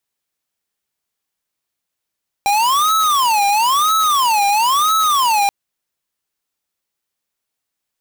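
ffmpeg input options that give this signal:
-f lavfi -i "aevalsrc='0.188*(2*lt(mod((1051*t-249/(2*PI*1)*sin(2*PI*1*t)),1),0.5)-1)':d=3.03:s=44100"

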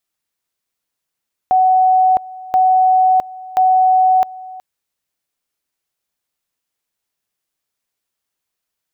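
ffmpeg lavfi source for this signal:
-f lavfi -i "aevalsrc='pow(10,(-8.5-20.5*gte(mod(t,1.03),0.66))/20)*sin(2*PI*747*t)':d=3.09:s=44100"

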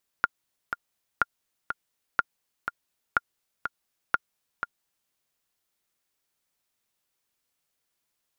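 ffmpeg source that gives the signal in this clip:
-f lavfi -i "aevalsrc='pow(10,(-7.5-8*gte(mod(t,2*60/123),60/123))/20)*sin(2*PI*1410*mod(t,60/123))*exp(-6.91*mod(t,60/123)/0.03)':d=4.87:s=44100"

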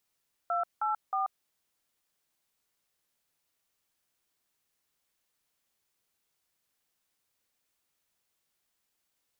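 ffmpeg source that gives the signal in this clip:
-f lavfi -i "aevalsrc='0.0335*clip(min(mod(t,0.314),0.135-mod(t,0.314))/0.002,0,1)*(eq(floor(t/0.314),0)*(sin(2*PI*697*mod(t,0.314))+sin(2*PI*1336*mod(t,0.314)))+eq(floor(t/0.314),1)*(sin(2*PI*852*mod(t,0.314))+sin(2*PI*1336*mod(t,0.314)))+eq(floor(t/0.314),2)*(sin(2*PI*770*mod(t,0.314))+sin(2*PI*1209*mod(t,0.314))))':d=0.942:s=44100"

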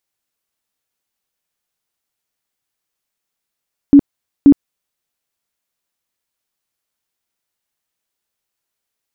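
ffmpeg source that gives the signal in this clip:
-f lavfi -i "aevalsrc='0.841*sin(2*PI*283*mod(t,0.53))*lt(mod(t,0.53),18/283)':d=1.06:s=44100"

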